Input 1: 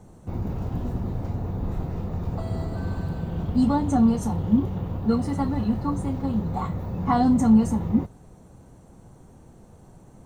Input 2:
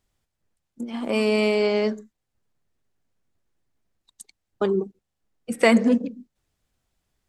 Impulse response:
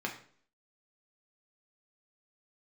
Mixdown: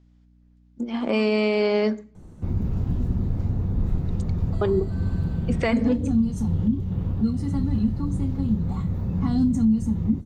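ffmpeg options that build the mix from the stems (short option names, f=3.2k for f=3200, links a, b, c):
-filter_complex "[0:a]lowshelf=f=130:g=8.5,acrossover=split=290|3000[a][b][c];[b]acompressor=threshold=-40dB:ratio=2.5[d];[a][d][c]amix=inputs=3:normalize=0,equalizer=f=760:t=o:w=1.2:g=-6,adelay=2150,volume=-1dB,asplit=2[e][f];[f]volume=-15dB[g];[1:a]lowpass=f=6.5k:w=0.5412,lowpass=f=6.5k:w=1.3066,aeval=exprs='val(0)+0.00158*(sin(2*PI*60*n/s)+sin(2*PI*2*60*n/s)/2+sin(2*PI*3*60*n/s)/3+sin(2*PI*4*60*n/s)/4+sin(2*PI*5*60*n/s)/5)':c=same,volume=1.5dB,asplit=2[h][i];[i]volume=-16.5dB[j];[2:a]atrim=start_sample=2205[k];[g][j]amix=inputs=2:normalize=0[l];[l][k]afir=irnorm=-1:irlink=0[m];[e][h][m]amix=inputs=3:normalize=0,highshelf=f=9.8k:g=-8,alimiter=limit=-12.5dB:level=0:latency=1:release=318"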